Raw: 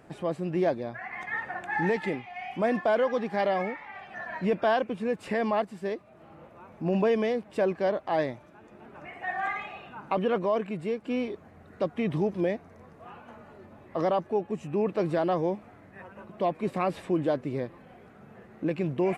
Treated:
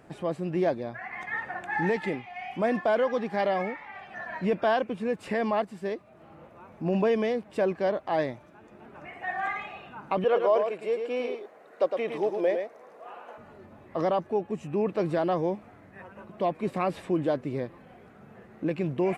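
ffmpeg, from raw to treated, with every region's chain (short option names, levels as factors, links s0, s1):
-filter_complex "[0:a]asettb=1/sr,asplit=3[s0][s1][s2];[s0]atrim=end=10.244[s3];[s1]atrim=start=10.24:end=13.38,asetpts=PTS-STARTPTS,afade=t=in:d=0.004:c=qsin,afade=t=out:st=3.136:d=0.004:c=qsin,highpass=f=500:t=q:w=1.6,aecho=1:1:109:0.501,atrim=end_sample=138474[s4];[s2]atrim=start=13.376[s5];[s3][s4]acrossfade=d=0.004:c1=hsin:c2=qsin[s6];[s6][s5]acrossfade=d=0.004:c1=qsin:c2=hsin"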